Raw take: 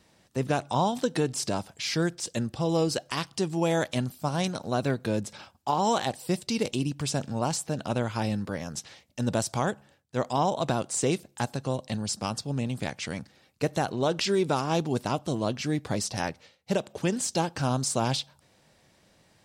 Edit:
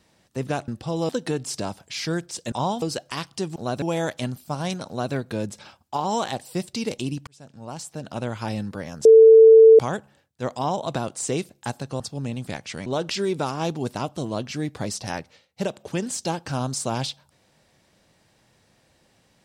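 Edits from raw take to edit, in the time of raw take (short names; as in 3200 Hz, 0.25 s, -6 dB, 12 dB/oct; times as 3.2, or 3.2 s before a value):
0.68–0.98 swap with 2.41–2.82
4.62–4.88 copy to 3.56
7.01–8.11 fade in
8.79–9.53 bleep 446 Hz -6.5 dBFS
11.74–12.33 cut
13.19–13.96 cut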